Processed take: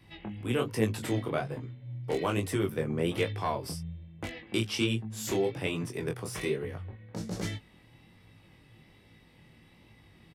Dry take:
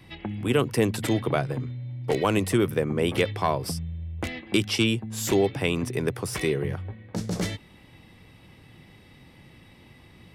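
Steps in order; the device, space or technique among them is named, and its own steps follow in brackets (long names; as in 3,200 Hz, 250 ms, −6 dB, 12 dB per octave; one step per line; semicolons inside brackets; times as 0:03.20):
double-tracked vocal (double-tracking delay 18 ms −9.5 dB; chorus effect 1.2 Hz, delay 18.5 ms, depth 7.7 ms)
level −4 dB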